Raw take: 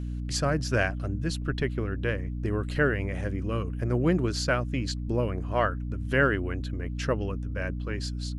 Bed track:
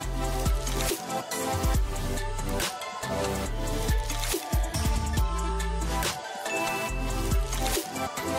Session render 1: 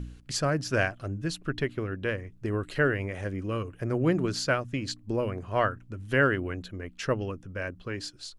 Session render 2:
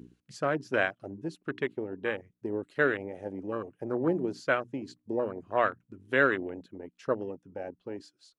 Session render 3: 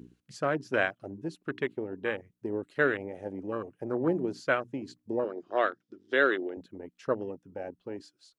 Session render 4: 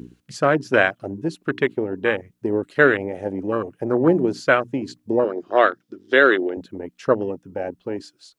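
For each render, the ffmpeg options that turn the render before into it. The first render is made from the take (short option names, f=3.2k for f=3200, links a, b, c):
-af "bandreject=f=60:t=h:w=4,bandreject=f=120:t=h:w=4,bandreject=f=180:t=h:w=4,bandreject=f=240:t=h:w=4,bandreject=f=300:t=h:w=4"
-af "afwtdn=0.0251,highpass=260"
-filter_complex "[0:a]asettb=1/sr,asplit=3[a][b][c];[a]atrim=end=5.244[d];[b]atrim=start=5.24:end=6.57,asetpts=PTS-STARTPTS,afade=t=in:d=0.004:c=qsin,afade=t=out:st=1.326:d=0.004:c=qsin,highpass=320,equalizer=f=350:t=q:w=4:g=6,equalizer=f=1k:t=q:w=4:g=-5,equalizer=f=2.5k:t=q:w=4:g=-6,equalizer=f=3.5k:t=q:w=4:g=8,equalizer=f=5.1k:t=q:w=4:g=9,lowpass=f=6.8k:w=0.5412,lowpass=f=6.8k:w=1.3066[e];[c]atrim=start=6.566[f];[d][e]acrossfade=d=0.004:c1=hsin:c2=qsin[g];[g][f]acrossfade=d=0.004:c1=qsin:c2=hsin"
-af "volume=11dB,alimiter=limit=-2dB:level=0:latency=1"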